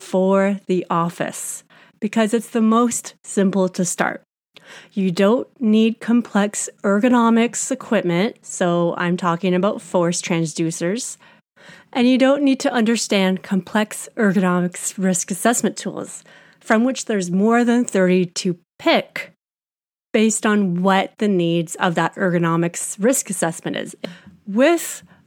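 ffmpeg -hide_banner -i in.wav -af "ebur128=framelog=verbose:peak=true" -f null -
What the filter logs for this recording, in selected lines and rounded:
Integrated loudness:
  I:         -19.0 LUFS
  Threshold: -29.5 LUFS
Loudness range:
  LRA:         2.3 LU
  Threshold: -39.5 LUFS
  LRA low:   -20.5 LUFS
  LRA high:  -18.1 LUFS
True peak:
  Peak:       -1.8 dBFS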